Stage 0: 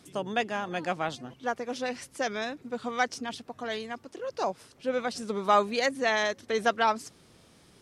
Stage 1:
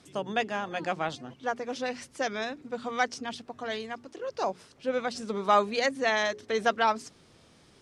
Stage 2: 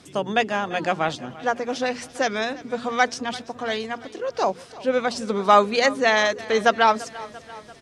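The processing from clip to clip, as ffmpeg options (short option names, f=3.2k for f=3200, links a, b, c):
-af "lowpass=8.4k,bandreject=f=60:t=h:w=6,bandreject=f=120:t=h:w=6,bandreject=f=180:t=h:w=6,bandreject=f=240:t=h:w=6,bandreject=f=300:t=h:w=6,bandreject=f=360:t=h:w=6,bandreject=f=420:t=h:w=6"
-af "aecho=1:1:341|682|1023|1364|1705:0.112|0.0662|0.0391|0.023|0.0136,volume=7.5dB"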